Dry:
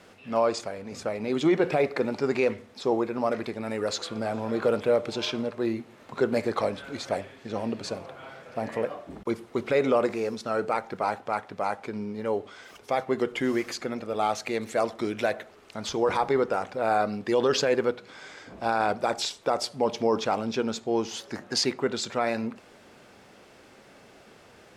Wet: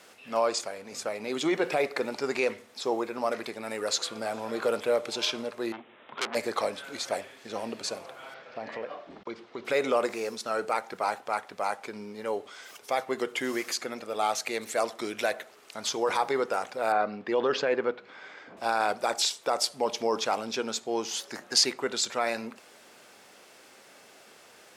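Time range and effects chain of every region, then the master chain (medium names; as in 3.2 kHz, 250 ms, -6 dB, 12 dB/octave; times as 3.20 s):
5.72–6.35 s: high-pass 120 Hz 6 dB/octave + careless resampling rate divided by 6×, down none, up filtered + transformer saturation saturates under 3.1 kHz
8.34–9.65 s: compression 2.5:1, threshold -30 dBFS + low-pass 4.8 kHz 24 dB/octave
16.92–18.57 s: band-pass 120–2500 Hz + bass shelf 160 Hz +6 dB
whole clip: high-pass 530 Hz 6 dB/octave; treble shelf 6.1 kHz +10.5 dB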